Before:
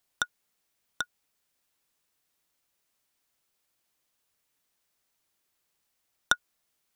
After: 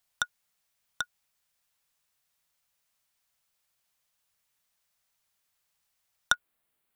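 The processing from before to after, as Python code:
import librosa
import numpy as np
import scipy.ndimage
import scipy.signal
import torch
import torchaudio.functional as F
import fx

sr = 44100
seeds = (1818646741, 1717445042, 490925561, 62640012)

y = fx.peak_eq(x, sr, hz=fx.steps((0.0, 330.0), (6.34, 5800.0)), db=-13.0, octaves=0.85)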